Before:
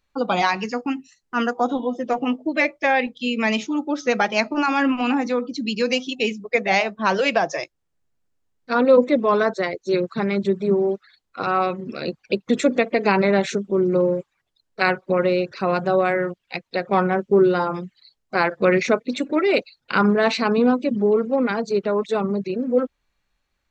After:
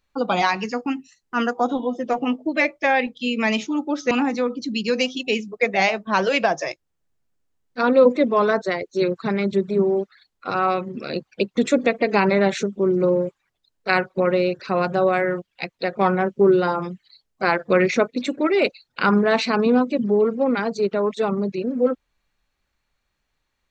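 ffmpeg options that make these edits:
-filter_complex "[0:a]asplit=2[a][b];[a]atrim=end=4.112[c];[b]atrim=start=5.028[d];[c][d]acrossfade=d=0.004:c1=hsin:c2=hsin"

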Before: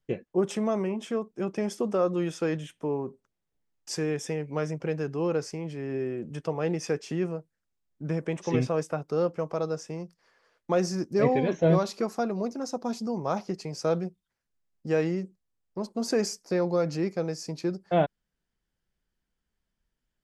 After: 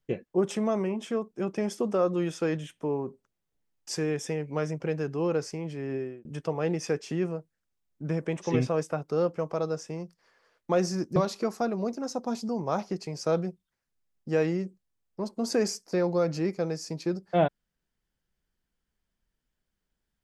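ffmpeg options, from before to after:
-filter_complex "[0:a]asplit=3[a][b][c];[a]atrim=end=6.25,asetpts=PTS-STARTPTS,afade=t=out:st=5.93:d=0.32[d];[b]atrim=start=6.25:end=11.162,asetpts=PTS-STARTPTS,afade=t=in:d=0.004:c=hsin[e];[c]atrim=start=11.738[f];[d][e]concat=n=2:v=0:a=1[g];[g][f]acrossfade=d=0.004:c1=hsin:c2=hsin"

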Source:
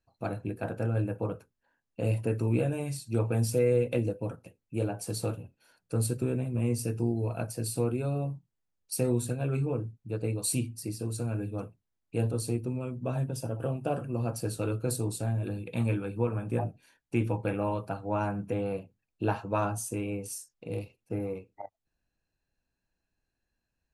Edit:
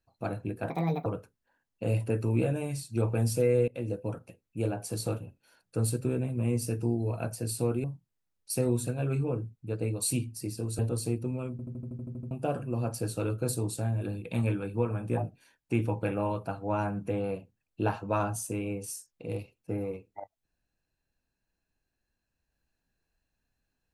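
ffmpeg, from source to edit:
-filter_complex "[0:a]asplit=16[a][b][c][d][e][f][g][h][i][j][k][l][m][n][o][p];[a]atrim=end=0.704[q];[b]atrim=start=0.7:end=1.23,asetpts=PTS-STARTPTS,asetrate=64827,aresample=44100[r];[c]atrim=start=1.226:end=3.85,asetpts=PTS-STARTPTS,afade=t=out:st=2.62:d=0.004:c=hsin:silence=0.0707946[s];[d]atrim=start=3.85:end=8.012,asetpts=PTS-STARTPTS,afade=t=in:d=0.31:silence=0.0707946[t];[e]atrim=start=8.258:end=11.212[u];[f]atrim=start=12.208:end=13.012[v];[g]atrim=start=12.928:end=13.012[w];[h]atrim=start=12.928:end=13.012[x];[i]atrim=start=12.928:end=13.012[y];[j]atrim=start=12.928:end=13.012[z];[k]atrim=start=12.928:end=13.012[aa];[l]atrim=start=12.928:end=13.012[ab];[m]atrim=start=12.928:end=13.012[ac];[n]atrim=start=12.928:end=13.012[ad];[o]atrim=start=12.928:end=13.012[ae];[p]atrim=start=13.728[af];[q][r]acrossfade=d=0.004:c1=hsin:c2=hsin[ag];[s][t]concat=n=2:v=0:a=1[ah];[ag][ah]acrossfade=d=0.004:c1=hsin:c2=hsin[ai];[ai][u]acrossfade=d=0.004:c1=hsin:c2=hsin[aj];[aj][v]acrossfade=d=0.004:c1=hsin:c2=hsin[ak];[ak][w]acrossfade=d=0.004:c1=hsin:c2=hsin[al];[al][x]acrossfade=d=0.004:c1=hsin:c2=hsin[am];[am][y]acrossfade=d=0.004:c1=hsin:c2=hsin[an];[an][z]acrossfade=d=0.004:c1=hsin:c2=hsin[ao];[ao][aa]acrossfade=d=0.004:c1=hsin:c2=hsin[ap];[ap][ab]acrossfade=d=0.004:c1=hsin:c2=hsin[aq];[aq][ac]acrossfade=d=0.004:c1=hsin:c2=hsin[ar];[ar][ad]acrossfade=d=0.004:c1=hsin:c2=hsin[as];[as][ae]acrossfade=d=0.004:c1=hsin:c2=hsin[at];[at][af]acrossfade=d=0.004:c1=hsin:c2=hsin"

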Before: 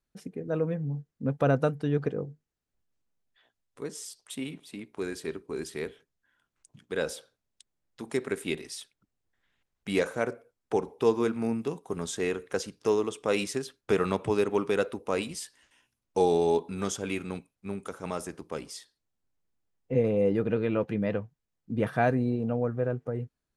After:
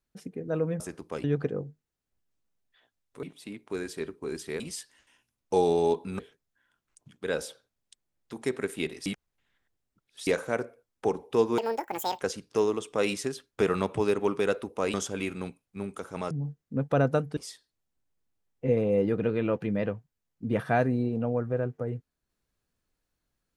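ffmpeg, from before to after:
-filter_complex "[0:a]asplit=13[a][b][c][d][e][f][g][h][i][j][k][l][m];[a]atrim=end=0.802[n];[b]atrim=start=18.198:end=18.642[o];[c]atrim=start=1.858:end=3.852[p];[d]atrim=start=4.498:end=5.872[q];[e]atrim=start=15.238:end=16.832[r];[f]atrim=start=5.868:end=8.742[s];[g]atrim=start=8.738:end=9.952,asetpts=PTS-STARTPTS,areverse[t];[h]atrim=start=9.948:end=11.264[u];[i]atrim=start=11.26:end=12.51,asetpts=PTS-STARTPTS,asetrate=87759,aresample=44100,atrim=end_sample=27701,asetpts=PTS-STARTPTS[v];[j]atrim=start=12.506:end=15.242[w];[k]atrim=start=16.828:end=18.202[x];[l]atrim=start=0.798:end=1.862[y];[m]atrim=start=18.638[z];[n][o]acrossfade=d=0.004:c1=hsin:c2=hsin[aa];[aa][p]acrossfade=d=0.004:c1=hsin:c2=hsin[ab];[ab][q]acrossfade=d=0.004:c1=hsin:c2=hsin[ac];[ac][r]acrossfade=d=0.004:c1=hsin:c2=hsin[ad];[ad][s]acrossfade=d=0.004:c1=hsin:c2=hsin[ae];[ae][t]acrossfade=d=0.004:c1=hsin:c2=hsin[af];[af][u]acrossfade=d=0.004:c1=hsin:c2=hsin[ag];[ag][v]acrossfade=d=0.004:c1=hsin:c2=hsin[ah];[ah][w]acrossfade=d=0.004:c1=hsin:c2=hsin[ai];[ai][x]acrossfade=d=0.004:c1=hsin:c2=hsin[aj];[aj][y]acrossfade=d=0.004:c1=hsin:c2=hsin[ak];[ak][z]acrossfade=d=0.004:c1=hsin:c2=hsin"

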